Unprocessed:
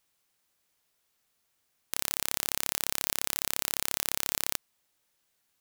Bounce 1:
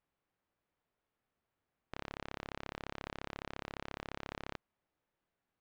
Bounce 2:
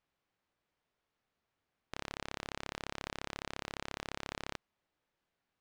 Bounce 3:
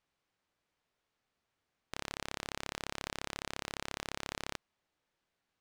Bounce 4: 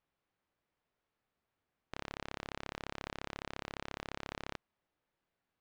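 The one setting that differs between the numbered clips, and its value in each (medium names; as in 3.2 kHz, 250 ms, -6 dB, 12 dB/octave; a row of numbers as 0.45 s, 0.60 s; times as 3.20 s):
tape spacing loss, at 10 kHz: 46 dB, 29 dB, 21 dB, 38 dB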